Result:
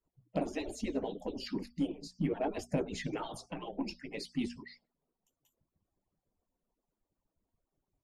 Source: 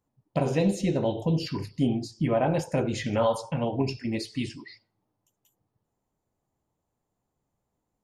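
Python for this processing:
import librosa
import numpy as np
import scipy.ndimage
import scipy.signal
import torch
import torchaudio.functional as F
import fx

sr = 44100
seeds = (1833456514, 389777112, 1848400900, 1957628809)

p1 = fx.hpss_only(x, sr, part='percussive')
p2 = fx.tilt_eq(p1, sr, slope=-1.5)
p3 = fx.hum_notches(p2, sr, base_hz=60, count=4)
p4 = fx.dynamic_eq(p3, sr, hz=1100.0, q=0.7, threshold_db=-40.0, ratio=4.0, max_db=-4)
p5 = 10.0 ** (-29.0 / 20.0) * np.tanh(p4 / 10.0 ** (-29.0 / 20.0))
p6 = p4 + (p5 * 10.0 ** (-9.5 / 20.0))
y = p6 * 10.0 ** (-5.5 / 20.0)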